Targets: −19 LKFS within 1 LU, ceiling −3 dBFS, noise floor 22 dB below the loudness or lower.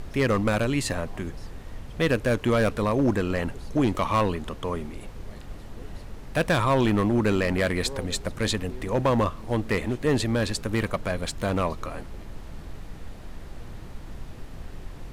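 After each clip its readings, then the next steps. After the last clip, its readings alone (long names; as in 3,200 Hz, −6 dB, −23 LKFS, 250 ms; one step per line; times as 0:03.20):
share of clipped samples 0.9%; peaks flattened at −15.5 dBFS; background noise floor −41 dBFS; target noise floor −48 dBFS; integrated loudness −25.5 LKFS; sample peak −15.5 dBFS; target loudness −19.0 LKFS
→ clipped peaks rebuilt −15.5 dBFS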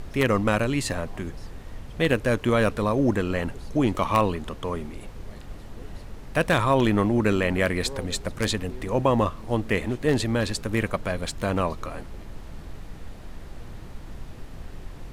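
share of clipped samples 0.0%; background noise floor −41 dBFS; target noise floor −47 dBFS
→ noise reduction from a noise print 6 dB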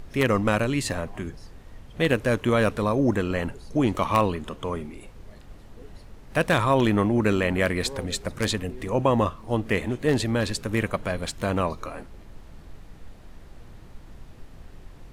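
background noise floor −46 dBFS; target noise floor −47 dBFS
→ noise reduction from a noise print 6 dB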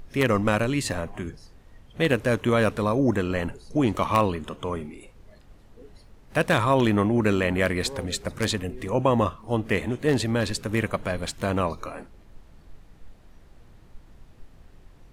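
background noise floor −52 dBFS; integrated loudness −25.0 LKFS; sample peak −6.5 dBFS; target loudness −19.0 LKFS
→ level +6 dB
brickwall limiter −3 dBFS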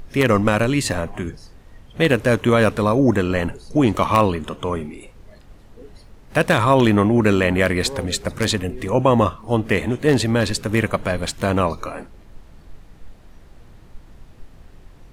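integrated loudness −19.0 LKFS; sample peak −3.0 dBFS; background noise floor −46 dBFS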